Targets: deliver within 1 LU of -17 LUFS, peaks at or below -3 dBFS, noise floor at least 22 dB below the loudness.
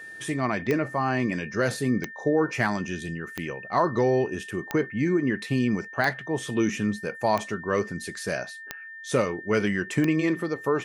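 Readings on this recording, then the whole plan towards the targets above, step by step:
clicks 8; steady tone 1800 Hz; tone level -39 dBFS; loudness -26.5 LUFS; peak -8.5 dBFS; loudness target -17.0 LUFS
-> de-click; notch 1800 Hz, Q 30; gain +9.5 dB; limiter -3 dBFS

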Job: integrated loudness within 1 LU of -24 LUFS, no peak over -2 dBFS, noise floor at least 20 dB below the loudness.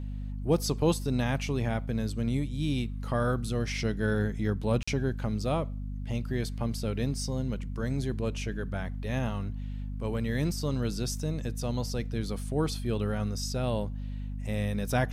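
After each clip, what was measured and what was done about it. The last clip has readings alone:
dropouts 1; longest dropout 45 ms; hum 50 Hz; harmonics up to 250 Hz; hum level -33 dBFS; loudness -31.5 LUFS; peak -13.5 dBFS; loudness target -24.0 LUFS
-> interpolate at 4.83, 45 ms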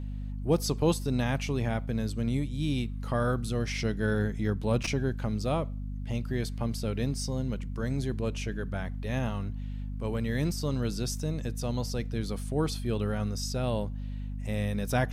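dropouts 0; hum 50 Hz; harmonics up to 250 Hz; hum level -33 dBFS
-> de-hum 50 Hz, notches 5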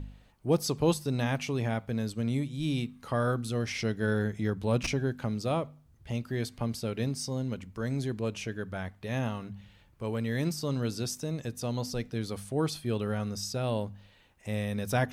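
hum none; loudness -32.0 LUFS; peak -14.0 dBFS; loudness target -24.0 LUFS
-> gain +8 dB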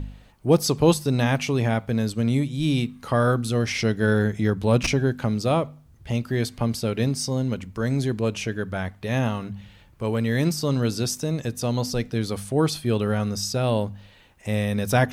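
loudness -24.0 LUFS; peak -6.0 dBFS; noise floor -52 dBFS

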